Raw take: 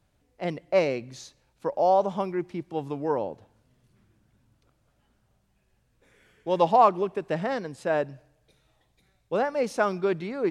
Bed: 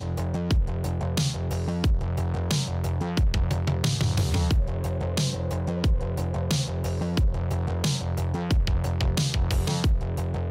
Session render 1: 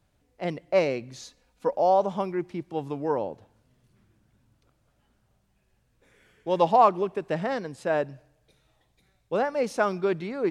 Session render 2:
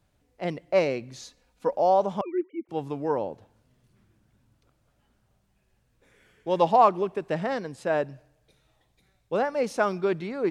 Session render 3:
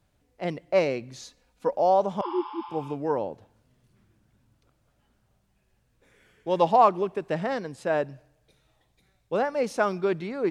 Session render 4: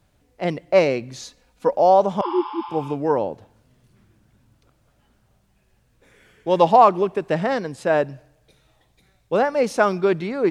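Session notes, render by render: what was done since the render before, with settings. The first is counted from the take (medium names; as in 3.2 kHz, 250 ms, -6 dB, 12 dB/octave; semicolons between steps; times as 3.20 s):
1.21–1.76 s: comb 4.1 ms
2.21–2.69 s: formants replaced by sine waves; 7.99–9.56 s: short-mantissa float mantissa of 8-bit
2.25–2.90 s: spectral replace 820–5300 Hz both
trim +6.5 dB; peak limiter -3 dBFS, peak gain reduction 2 dB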